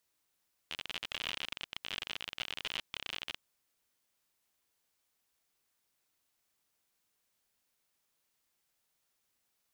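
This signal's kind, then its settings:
Geiger counter clicks 57 per second −22 dBFS 2.66 s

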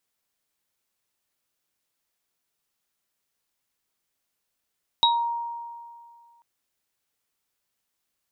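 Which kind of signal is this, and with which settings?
inharmonic partials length 1.39 s, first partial 938 Hz, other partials 3,810 Hz, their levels 5 dB, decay 2.13 s, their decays 0.24 s, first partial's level −17.5 dB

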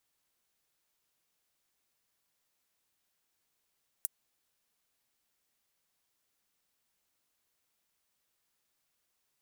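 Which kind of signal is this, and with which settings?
closed synth hi-hat, high-pass 9,100 Hz, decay 0.03 s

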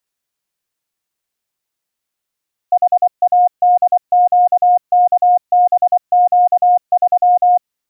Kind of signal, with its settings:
Morse code "HADQKBQ3" 24 words per minute 717 Hz −7 dBFS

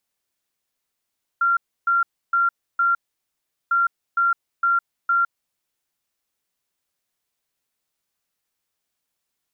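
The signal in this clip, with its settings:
beeps in groups sine 1,380 Hz, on 0.16 s, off 0.30 s, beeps 4, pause 0.76 s, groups 2, −15.5 dBFS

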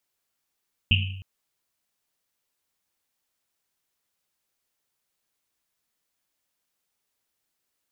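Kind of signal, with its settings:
drum after Risset length 0.31 s, pitch 95 Hz, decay 1.00 s, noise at 2,800 Hz, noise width 540 Hz, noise 40%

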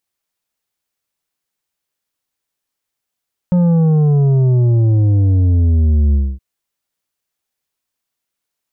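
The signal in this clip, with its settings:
bass drop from 180 Hz, over 2.87 s, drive 7.5 dB, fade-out 0.25 s, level −10 dB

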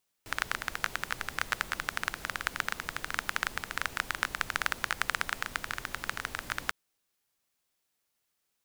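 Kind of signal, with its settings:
rain-like ticks over hiss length 6.45 s, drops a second 15, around 1,500 Hz, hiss −10 dB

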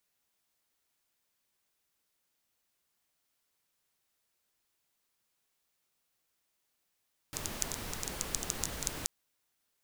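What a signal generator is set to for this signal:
rain-like ticks over hiss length 1.73 s, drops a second 9.6, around 6,800 Hz, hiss 0 dB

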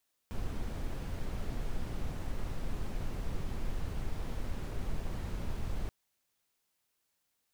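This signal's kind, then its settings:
noise brown, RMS −34 dBFS 5.58 s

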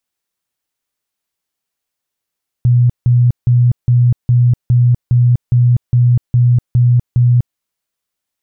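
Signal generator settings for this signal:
tone bursts 122 Hz, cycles 30, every 0.41 s, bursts 12, −6.5 dBFS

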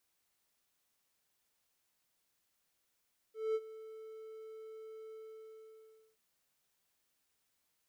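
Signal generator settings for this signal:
note with an ADSR envelope triangle 440 Hz, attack 209 ms, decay 47 ms, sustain −17.5 dB, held 1.79 s, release 1,040 ms −27.5 dBFS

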